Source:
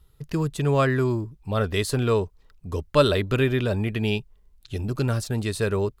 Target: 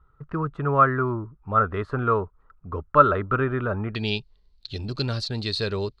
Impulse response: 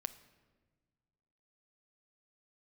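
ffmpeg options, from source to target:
-af "asetnsamples=nb_out_samples=441:pad=0,asendcmd='3.95 lowpass f 4300',lowpass=frequency=1300:width_type=q:width=7.4,volume=-3.5dB"

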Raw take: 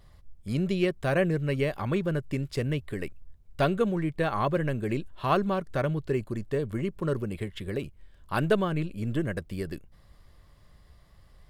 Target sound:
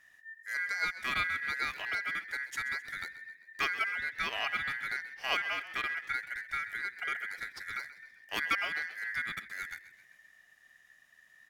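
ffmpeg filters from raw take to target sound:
ffmpeg -i in.wav -filter_complex "[0:a]aeval=exprs='val(0)*sin(2*PI*1800*n/s)':channel_layout=same,aemphasis=mode=production:type=cd,asplit=6[link_01][link_02][link_03][link_04][link_05][link_06];[link_02]adelay=131,afreqshift=47,volume=-15.5dB[link_07];[link_03]adelay=262,afreqshift=94,volume=-21.3dB[link_08];[link_04]adelay=393,afreqshift=141,volume=-27.2dB[link_09];[link_05]adelay=524,afreqshift=188,volume=-33dB[link_10];[link_06]adelay=655,afreqshift=235,volume=-38.9dB[link_11];[link_01][link_07][link_08][link_09][link_10][link_11]amix=inputs=6:normalize=0,volume=-5.5dB" out.wav

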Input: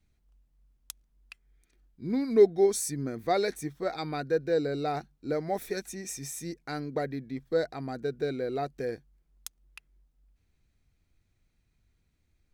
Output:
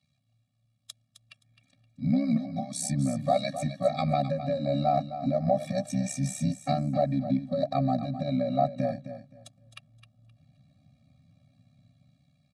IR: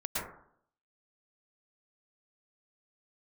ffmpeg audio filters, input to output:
-filter_complex "[0:a]highshelf=frequency=6300:gain=5,bandreject=frequency=650:width=13,acrossover=split=930[link_01][link_02];[link_01]dynaudnorm=framelen=570:gausssize=5:maxgain=15dB[link_03];[link_03][link_02]amix=inputs=2:normalize=0,alimiter=limit=-12dB:level=0:latency=1:release=178,acompressor=threshold=-23dB:ratio=6,tremolo=f=67:d=0.919,highpass=frequency=120:width=0.5412,highpass=frequency=120:width=1.3066,equalizer=frequency=210:width_type=q:width=4:gain=-4,equalizer=frequency=610:width_type=q:width=4:gain=3,equalizer=frequency=1500:width_type=q:width=4:gain=-9,equalizer=frequency=2300:width_type=q:width=4:gain=3,equalizer=frequency=3800:width_type=q:width=4:gain=7,equalizer=frequency=6300:width_type=q:width=4:gain=-6,lowpass=frequency=8800:width=0.5412,lowpass=frequency=8800:width=1.3066,aecho=1:1:261|522|783:0.266|0.0559|0.0117,afftfilt=real='re*eq(mod(floor(b*sr/1024/270),2),0)':imag='im*eq(mod(floor(b*sr/1024/270),2),0)':win_size=1024:overlap=0.75,volume=8.5dB"

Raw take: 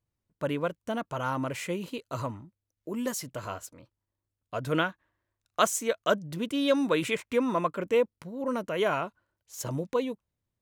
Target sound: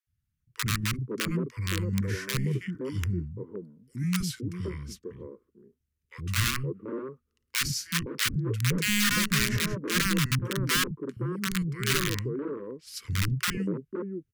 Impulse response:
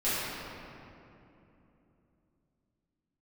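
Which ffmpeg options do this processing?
-filter_complex "[0:a]asetrate=32667,aresample=44100,equalizer=frequency=125:width_type=o:width=1:gain=9,equalizer=frequency=1000:width_type=o:width=1:gain=-3,equalizer=frequency=4000:width_type=o:width=1:gain=-5,equalizer=frequency=8000:width_type=o:width=1:gain=-4,aeval=exprs='(mod(10.6*val(0)+1,2)-1)/10.6':channel_layout=same,asuperstop=centerf=740:order=4:qfactor=0.91,acrossover=split=240|870[link_01][link_02][link_03];[link_01]adelay=70[link_04];[link_02]adelay=520[link_05];[link_04][link_05][link_03]amix=inputs=3:normalize=0,volume=2.5dB"

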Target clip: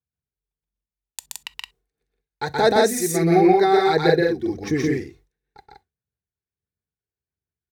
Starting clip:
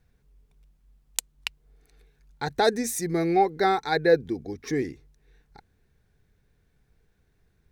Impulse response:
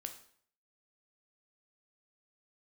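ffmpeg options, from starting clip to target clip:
-filter_complex "[0:a]highpass=frequency=65:width=0.5412,highpass=frequency=65:width=1.3066,agate=range=-33dB:threshold=-48dB:ratio=3:detection=peak,alimiter=limit=-13.5dB:level=0:latency=1:release=359,aphaser=in_gain=1:out_gain=1:delay=2.8:decay=0.51:speed=1.5:type=sinusoidal,aecho=1:1:125.4|169.1:0.891|0.794,asplit=2[link_01][link_02];[1:a]atrim=start_sample=2205,atrim=end_sample=3087[link_03];[link_02][link_03]afir=irnorm=-1:irlink=0,volume=-7.5dB[link_04];[link_01][link_04]amix=inputs=2:normalize=0"

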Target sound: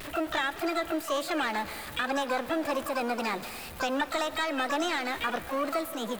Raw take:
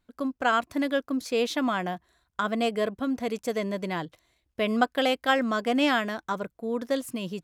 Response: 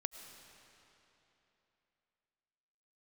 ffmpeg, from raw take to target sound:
-filter_complex "[0:a]aeval=exprs='val(0)+0.5*0.0188*sgn(val(0))':channel_layout=same,equalizer=frequency=4700:width_type=o:width=0.62:gain=-14,asplit=2[link_01][link_02];[link_02]asetrate=88200,aresample=44100,atempo=0.5,volume=-7dB[link_03];[link_01][link_03]amix=inputs=2:normalize=0,crystalizer=i=6:c=0,acompressor=threshold=-24dB:ratio=6,asplit=2[link_04][link_05];[link_05]highpass=frequency=720:poles=1,volume=8dB,asoftclip=type=tanh:threshold=-14dB[link_06];[link_04][link_06]amix=inputs=2:normalize=0,lowpass=frequency=1000:poles=1,volume=-6dB,asetrate=52920,aresample=44100,asplit=2[link_07][link_08];[1:a]atrim=start_sample=2205[link_09];[link_08][link_09]afir=irnorm=-1:irlink=0,volume=-0.5dB[link_10];[link_07][link_10]amix=inputs=2:normalize=0,volume=-4dB"

